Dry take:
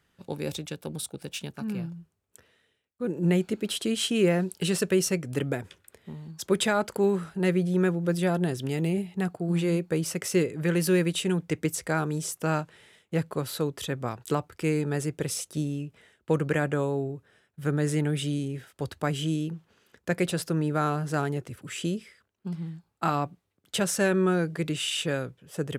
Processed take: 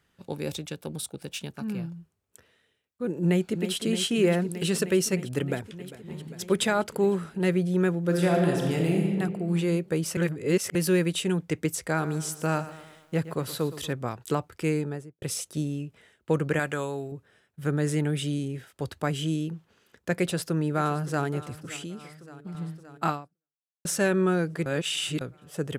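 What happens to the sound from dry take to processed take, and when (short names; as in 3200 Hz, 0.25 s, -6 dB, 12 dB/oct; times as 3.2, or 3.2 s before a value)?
3.24–3.73 echo throw 0.31 s, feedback 85%, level -9.5 dB
5.39–6.16 echo throw 0.4 s, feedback 80%, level -17 dB
8.03–9.07 reverb throw, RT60 1.7 s, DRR -0.5 dB
10.17–10.75 reverse
11.81–13.93 lo-fi delay 0.118 s, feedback 55%, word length 9-bit, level -14.5 dB
14.69–15.22 studio fade out
16.59–17.12 tilt shelf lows -6.5 dB
20.2–21.26 echo throw 0.57 s, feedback 75%, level -17.5 dB
21.76–22.55 compressor 2.5:1, threshold -37 dBFS
23.1–23.85 fade out exponential
24.66–25.21 reverse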